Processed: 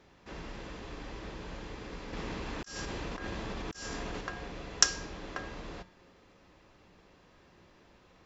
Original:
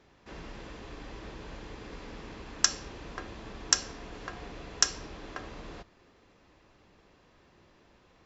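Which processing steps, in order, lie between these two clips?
resonator 180 Hz, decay 0.57 s, harmonics odd, mix 60%; 2.13–4.21 negative-ratio compressor -51 dBFS, ratio -1; gain +8.5 dB

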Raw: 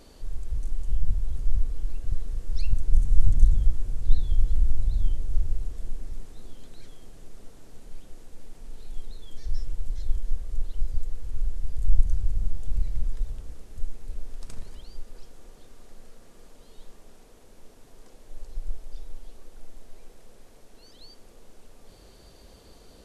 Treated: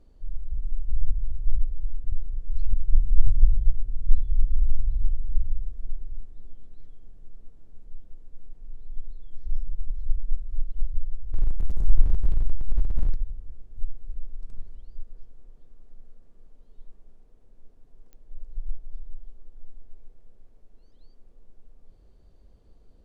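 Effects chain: 11.33–13.16 zero-crossing step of -18.5 dBFS; tilt -3 dB/oct; pops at 18.13, -19 dBFS; gain -15.5 dB

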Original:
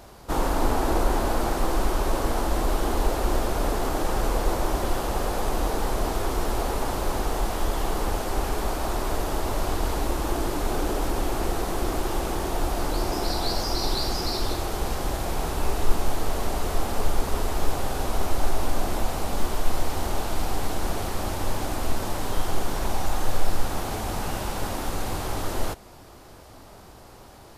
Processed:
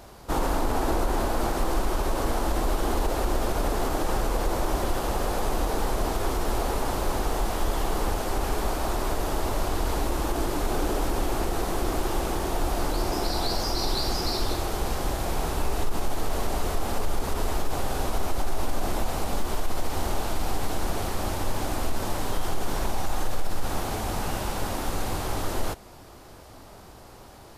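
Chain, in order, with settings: limiter -15.5 dBFS, peak gain reduction 10 dB

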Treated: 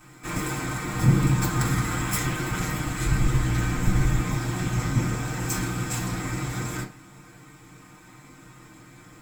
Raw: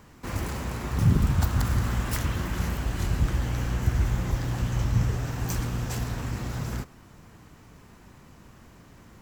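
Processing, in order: minimum comb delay 6.5 ms; 3.05–4.21 low shelf 61 Hz +12 dB; reverb RT60 0.30 s, pre-delay 3 ms, DRR -2.5 dB; gain +1 dB

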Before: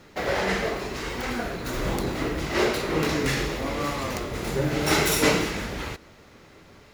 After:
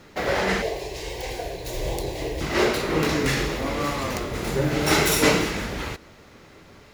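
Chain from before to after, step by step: 0.62–2.41 fixed phaser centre 550 Hz, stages 4; gain +2 dB

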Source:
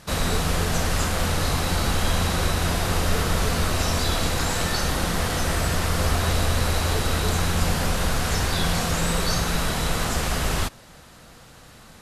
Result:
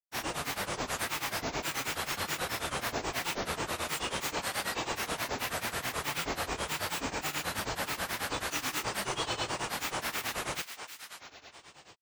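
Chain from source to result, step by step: HPF 560 Hz 6 dB/oct; thinning echo 0.223 s, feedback 69%, high-pass 760 Hz, level -9 dB; dynamic EQ 5400 Hz, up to -5 dB, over -42 dBFS, Q 1.1; grains 0.137 s, grains 9.3/s, pitch spread up and down by 12 st; gain -3 dB

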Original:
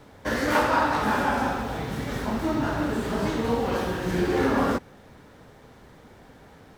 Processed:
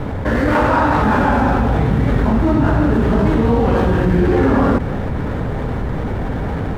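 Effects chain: median filter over 9 samples; high shelf 4400 Hz -11.5 dB; AGC gain up to 7 dB; low shelf 160 Hz +11.5 dB; fast leveller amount 70%; gain -1.5 dB

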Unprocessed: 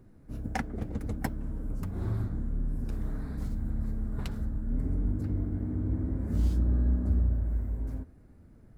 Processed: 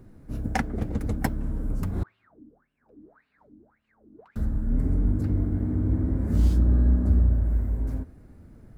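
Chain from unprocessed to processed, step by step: 2.03–4.36 wah 1.8 Hz 280–2900 Hz, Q 18; gain +6 dB

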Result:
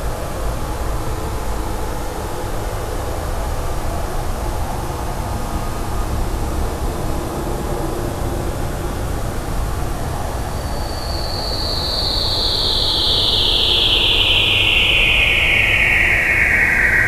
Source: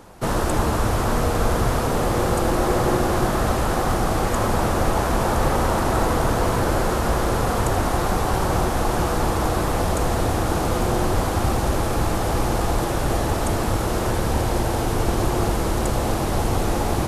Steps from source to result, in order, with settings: painted sound fall, 13.39–14.84, 500–4700 Hz -13 dBFS; phaser 0.7 Hz, delay 2.4 ms, feedback 38%; Paulstretch 8.2×, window 0.50 s, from 11.92; gain -2.5 dB

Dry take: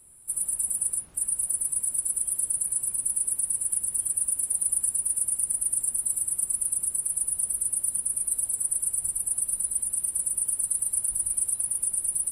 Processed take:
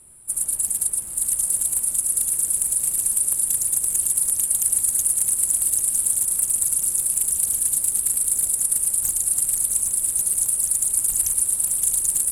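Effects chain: diffused feedback echo 0.855 s, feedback 52%, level -5 dB; Doppler distortion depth 0.71 ms; gain +6 dB

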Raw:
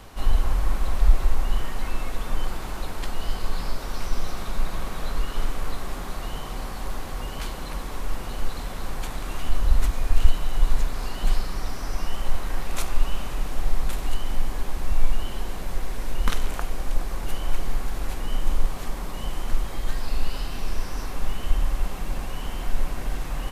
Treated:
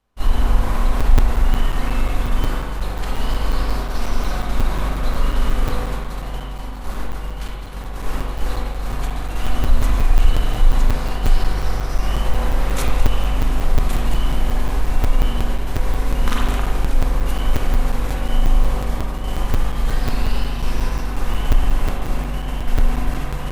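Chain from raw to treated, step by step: expander -22 dBFS; echo with dull and thin repeats by turns 0.106 s, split 1100 Hz, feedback 55%, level -7.5 dB; spring tank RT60 1 s, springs 38/42 ms, chirp 30 ms, DRR -1.5 dB; in parallel at +1 dB: limiter -13.5 dBFS, peak gain reduction 11.5 dB; on the sum: crackling interface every 0.18 s, samples 256, zero, from 1; gain -2 dB

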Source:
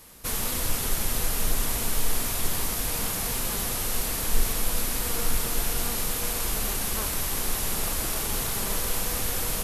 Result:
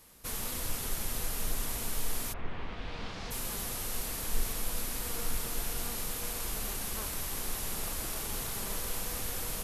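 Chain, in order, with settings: 2.32–3.3 LPF 2200 Hz -> 5400 Hz 24 dB/oct; gain -8 dB

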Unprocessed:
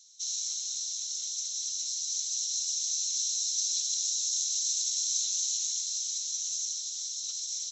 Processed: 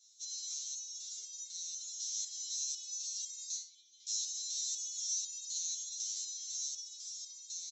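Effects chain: 3.57–4.07 vowel filter i; early reflections 12 ms -3 dB, 74 ms -10.5 dB; stepped resonator 4 Hz 110–540 Hz; gain +2 dB

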